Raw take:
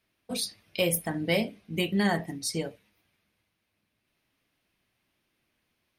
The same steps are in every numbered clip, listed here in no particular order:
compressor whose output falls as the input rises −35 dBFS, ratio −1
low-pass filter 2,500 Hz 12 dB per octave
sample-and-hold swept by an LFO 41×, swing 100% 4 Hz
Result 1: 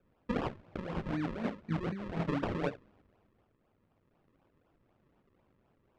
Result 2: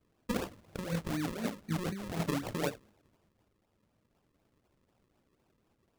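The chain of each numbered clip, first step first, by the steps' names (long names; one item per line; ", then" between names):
compressor whose output falls as the input rises, then sample-and-hold swept by an LFO, then low-pass filter
low-pass filter, then compressor whose output falls as the input rises, then sample-and-hold swept by an LFO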